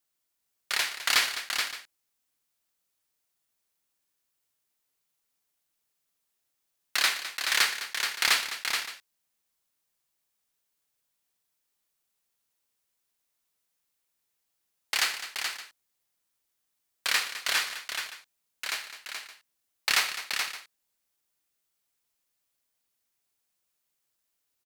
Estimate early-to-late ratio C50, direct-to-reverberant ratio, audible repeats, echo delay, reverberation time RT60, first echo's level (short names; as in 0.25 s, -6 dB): none, none, 5, 76 ms, none, -17.0 dB